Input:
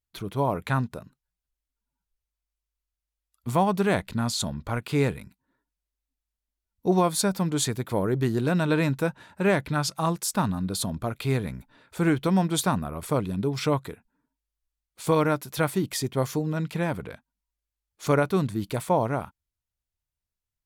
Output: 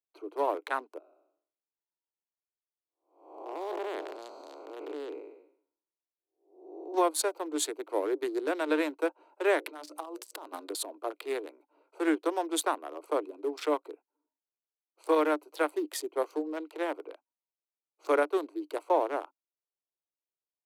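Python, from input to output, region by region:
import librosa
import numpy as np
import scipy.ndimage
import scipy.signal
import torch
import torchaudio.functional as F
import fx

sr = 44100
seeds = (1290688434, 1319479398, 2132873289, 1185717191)

y = fx.chain(x, sr, fx.spec_blur(span_ms=416.0),
    fx.highpass(hz=170.0, slope=12),
    fx.peak_eq(hz=9200.0, db=-14.5, octaves=0.22), at=(0.98, 6.94))
y = fx.chain(y, sr, fx.high_shelf(hz=3500.0, db=7.0),
    fx.hum_notches(base_hz=60, count=10),
    fx.over_compress(threshold_db=-32.0, ratio=-1.0), at=(9.58, 10.71))
y = fx.wiener(y, sr, points=25)
y = scipy.signal.sosfilt(scipy.signal.butter(16, 300.0, 'highpass', fs=sr, output='sos'), y)
y = fx.dynamic_eq(y, sr, hz=5200.0, q=1.7, threshold_db=-49.0, ratio=4.0, max_db=-4)
y = F.gain(torch.from_numpy(y), -2.0).numpy()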